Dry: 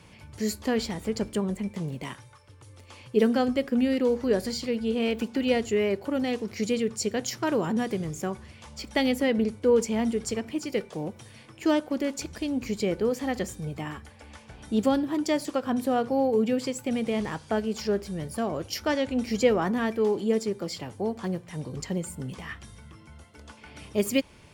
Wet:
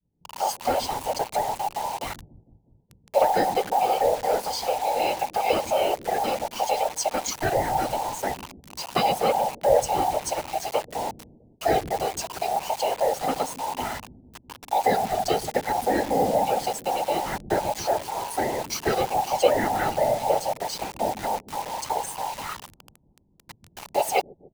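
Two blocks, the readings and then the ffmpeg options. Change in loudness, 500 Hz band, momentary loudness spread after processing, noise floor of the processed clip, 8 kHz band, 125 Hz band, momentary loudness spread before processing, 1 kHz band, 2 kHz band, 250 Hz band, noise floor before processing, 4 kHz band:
+2.5 dB, +2.0 dB, 9 LU, −61 dBFS, +5.5 dB, −2.5 dB, 12 LU, +12.5 dB, +2.0 dB, −9.0 dB, −52 dBFS, +3.0 dB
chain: -filter_complex "[0:a]afftfilt=real='real(if(between(b,1,1008),(2*floor((b-1)/48)+1)*48-b,b),0)':imag='imag(if(between(b,1,1008),(2*floor((b-1)/48)+1)*48-b,b),0)*if(between(b,1,1008),-1,1)':win_size=2048:overlap=0.75,agate=range=-33dB:threshold=-42dB:ratio=3:detection=peak,asplit=2[link_01][link_02];[link_02]acompressor=threshold=-34dB:ratio=6,volume=-2dB[link_03];[link_01][link_03]amix=inputs=2:normalize=0,afftfilt=real='hypot(re,im)*cos(2*PI*random(0))':imag='hypot(re,im)*sin(2*PI*random(1))':win_size=512:overlap=0.75,acrossover=split=290[link_04][link_05];[link_04]aecho=1:1:130|279.5|451.4|649.1|876.5:0.631|0.398|0.251|0.158|0.1[link_06];[link_05]acrusher=bits=6:mix=0:aa=0.000001[link_07];[link_06][link_07]amix=inputs=2:normalize=0,volume=6dB"

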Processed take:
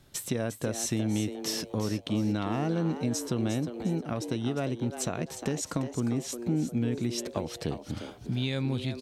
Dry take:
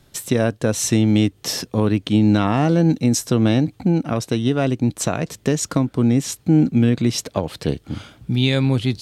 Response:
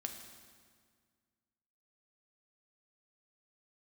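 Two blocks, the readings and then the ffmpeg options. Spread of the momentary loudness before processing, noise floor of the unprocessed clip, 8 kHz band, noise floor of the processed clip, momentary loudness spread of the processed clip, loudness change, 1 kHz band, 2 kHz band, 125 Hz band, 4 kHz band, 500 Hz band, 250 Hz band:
8 LU, −55 dBFS, −9.5 dB, −48 dBFS, 5 LU, −12.0 dB, −11.0 dB, −11.5 dB, −12.5 dB, −10.5 dB, −11.0 dB, −12.5 dB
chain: -filter_complex "[0:a]acompressor=threshold=-27dB:ratio=2,asplit=5[link_01][link_02][link_03][link_04][link_05];[link_02]adelay=354,afreqshift=120,volume=-10dB[link_06];[link_03]adelay=708,afreqshift=240,volume=-19.6dB[link_07];[link_04]adelay=1062,afreqshift=360,volume=-29.3dB[link_08];[link_05]adelay=1416,afreqshift=480,volume=-38.9dB[link_09];[link_01][link_06][link_07][link_08][link_09]amix=inputs=5:normalize=0,volume=-5dB"

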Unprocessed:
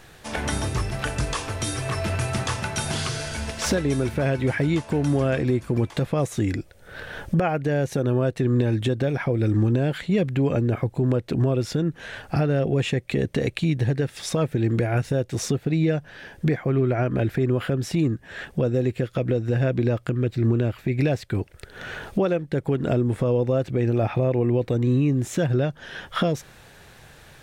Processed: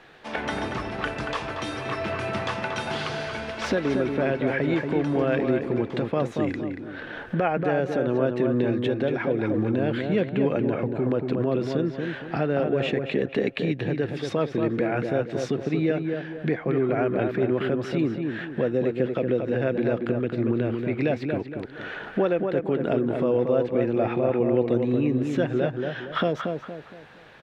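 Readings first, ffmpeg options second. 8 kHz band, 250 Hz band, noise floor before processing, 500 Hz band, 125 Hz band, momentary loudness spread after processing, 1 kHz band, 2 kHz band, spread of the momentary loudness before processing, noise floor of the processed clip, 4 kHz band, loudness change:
below −10 dB, −0.5 dB, −49 dBFS, +1.5 dB, −8.0 dB, 7 LU, +1.0 dB, +0.5 dB, 6 LU, −41 dBFS, −3.5 dB, −1.5 dB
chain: -filter_complex "[0:a]acrossover=split=190 4100:gain=0.178 1 0.0794[link_01][link_02][link_03];[link_01][link_02][link_03]amix=inputs=3:normalize=0,asplit=2[link_04][link_05];[link_05]adelay=232,lowpass=frequency=2100:poles=1,volume=-4.5dB,asplit=2[link_06][link_07];[link_07]adelay=232,lowpass=frequency=2100:poles=1,volume=0.39,asplit=2[link_08][link_09];[link_09]adelay=232,lowpass=frequency=2100:poles=1,volume=0.39,asplit=2[link_10][link_11];[link_11]adelay=232,lowpass=frequency=2100:poles=1,volume=0.39,asplit=2[link_12][link_13];[link_13]adelay=232,lowpass=frequency=2100:poles=1,volume=0.39[link_14];[link_06][link_08][link_10][link_12][link_14]amix=inputs=5:normalize=0[link_15];[link_04][link_15]amix=inputs=2:normalize=0"

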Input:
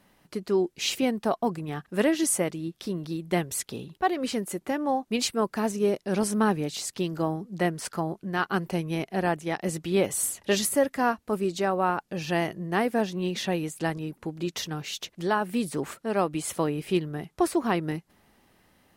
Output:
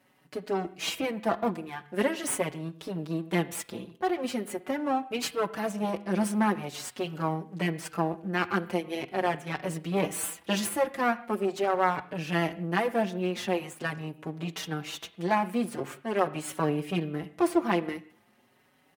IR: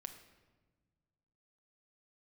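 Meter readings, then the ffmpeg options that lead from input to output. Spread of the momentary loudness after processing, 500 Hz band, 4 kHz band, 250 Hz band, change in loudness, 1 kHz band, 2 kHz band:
9 LU, −2.5 dB, −3.5 dB, −2.5 dB, −2.5 dB, −1.0 dB, −0.5 dB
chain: -filter_complex "[0:a]aeval=exprs='if(lt(val(0),0),0.251*val(0),val(0))':channel_layout=same,highpass=120,asplit=2[link_01][link_02];[link_02]highshelf=frequency=4400:width_type=q:width=1.5:gain=-11.5[link_03];[1:a]atrim=start_sample=2205,afade=type=out:start_time=0.24:duration=0.01,atrim=end_sample=11025[link_04];[link_03][link_04]afir=irnorm=-1:irlink=0,volume=1dB[link_05];[link_01][link_05]amix=inputs=2:normalize=0,asplit=2[link_06][link_07];[link_07]adelay=5,afreqshift=0.43[link_08];[link_06][link_08]amix=inputs=2:normalize=1"

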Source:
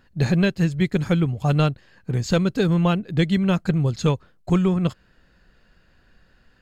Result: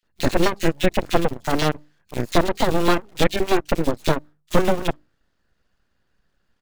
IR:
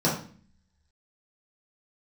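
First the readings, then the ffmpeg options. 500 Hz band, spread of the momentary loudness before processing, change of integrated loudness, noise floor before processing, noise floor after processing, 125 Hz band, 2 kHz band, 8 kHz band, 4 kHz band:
+4.0 dB, 5 LU, −1.0 dB, −59 dBFS, −70 dBFS, −8.0 dB, +3.5 dB, can't be measured, +4.5 dB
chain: -filter_complex "[0:a]bandreject=frequency=50:width_type=h:width=6,bandreject=frequency=100:width_type=h:width=6,bandreject=frequency=150:width_type=h:width=6,bandreject=frequency=200:width_type=h:width=6,asplit=2[link_01][link_02];[link_02]acrusher=bits=4:mode=log:mix=0:aa=0.000001,volume=-4.5dB[link_03];[link_01][link_03]amix=inputs=2:normalize=0,aeval=exprs='0.668*(cos(1*acos(clip(val(0)/0.668,-1,1)))-cos(1*PI/2))+0.0188*(cos(3*acos(clip(val(0)/0.668,-1,1)))-cos(3*PI/2))+0.0266*(cos(6*acos(clip(val(0)/0.668,-1,1)))-cos(6*PI/2))+0.106*(cos(7*acos(clip(val(0)/0.668,-1,1)))-cos(7*PI/2))':channel_layout=same,aeval=exprs='abs(val(0))':channel_layout=same,acrossover=split=2400[link_04][link_05];[link_04]adelay=30[link_06];[link_06][link_05]amix=inputs=2:normalize=0"

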